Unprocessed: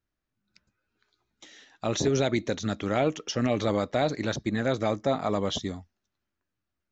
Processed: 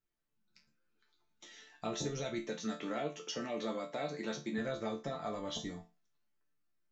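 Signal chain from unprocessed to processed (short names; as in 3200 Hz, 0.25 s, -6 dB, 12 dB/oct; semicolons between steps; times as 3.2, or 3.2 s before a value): 2.42–4.58 HPF 160 Hz 24 dB/oct; compressor 2.5:1, threshold -32 dBFS, peak gain reduction 8.5 dB; resonator bank D3 minor, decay 0.28 s; gain +10 dB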